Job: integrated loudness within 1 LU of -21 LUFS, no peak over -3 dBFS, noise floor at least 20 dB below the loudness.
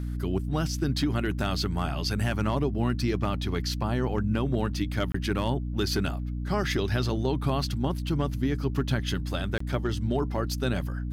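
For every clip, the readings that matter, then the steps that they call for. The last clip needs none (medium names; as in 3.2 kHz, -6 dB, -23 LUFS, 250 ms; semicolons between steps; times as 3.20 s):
dropouts 2; longest dropout 24 ms; hum 60 Hz; highest harmonic 300 Hz; hum level -29 dBFS; loudness -28.5 LUFS; peak level -15.0 dBFS; loudness target -21.0 LUFS
-> interpolate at 5.12/9.58 s, 24 ms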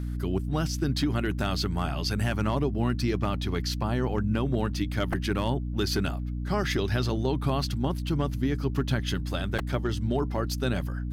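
dropouts 0; hum 60 Hz; highest harmonic 300 Hz; hum level -29 dBFS
-> de-hum 60 Hz, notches 5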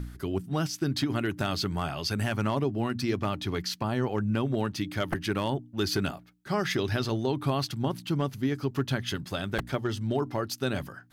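hum not found; loudness -30.0 LUFS; peak level -13.5 dBFS; loudness target -21.0 LUFS
-> trim +9 dB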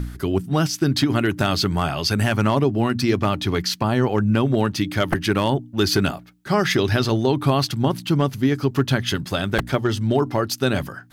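loudness -21.0 LUFS; peak level -4.5 dBFS; noise floor -42 dBFS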